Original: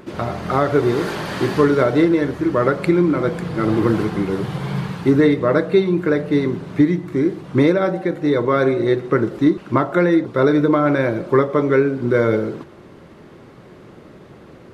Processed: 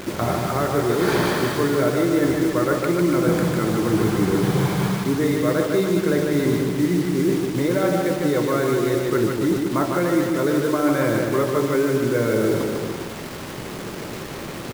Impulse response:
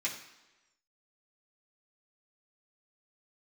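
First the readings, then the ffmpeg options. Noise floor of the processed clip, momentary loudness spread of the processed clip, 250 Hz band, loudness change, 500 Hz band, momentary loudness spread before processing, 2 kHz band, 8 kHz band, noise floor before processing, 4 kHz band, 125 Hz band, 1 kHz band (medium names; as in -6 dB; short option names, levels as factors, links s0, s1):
-32 dBFS, 11 LU, -2.5 dB, -2.5 dB, -3.0 dB, 7 LU, -1.5 dB, no reading, -43 dBFS, +3.0 dB, -1.5 dB, -2.5 dB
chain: -af "bandreject=f=2800:w=12,areverse,acompressor=threshold=0.0562:ratio=16,areverse,acrusher=bits=6:mix=0:aa=0.000001,aecho=1:1:150|285|406.5|515.8|614.3:0.631|0.398|0.251|0.158|0.1,volume=2.24"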